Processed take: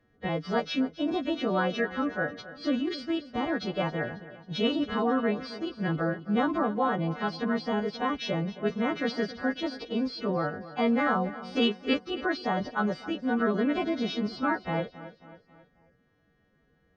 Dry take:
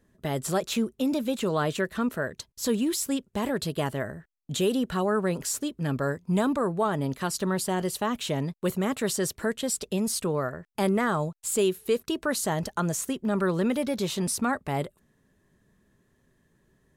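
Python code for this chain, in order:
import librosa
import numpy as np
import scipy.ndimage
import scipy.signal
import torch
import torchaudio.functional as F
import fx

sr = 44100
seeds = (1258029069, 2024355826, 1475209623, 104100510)

p1 = fx.freq_snap(x, sr, grid_st=2)
p2 = scipy.ndimage.gaussian_filter1d(p1, 2.5, mode='constant')
p3 = fx.pitch_keep_formants(p2, sr, semitones=3.0)
y = p3 + fx.echo_feedback(p3, sr, ms=271, feedback_pct=47, wet_db=-15.5, dry=0)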